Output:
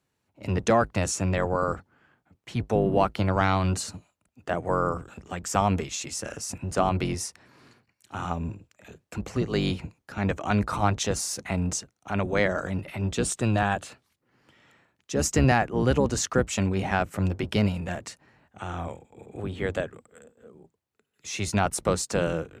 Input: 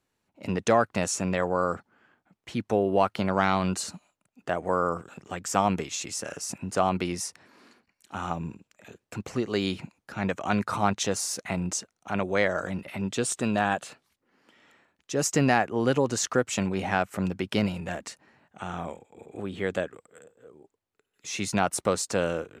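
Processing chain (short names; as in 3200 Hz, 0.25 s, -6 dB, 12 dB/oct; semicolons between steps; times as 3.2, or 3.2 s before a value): octaver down 1 oct, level +1 dB; HPF 49 Hz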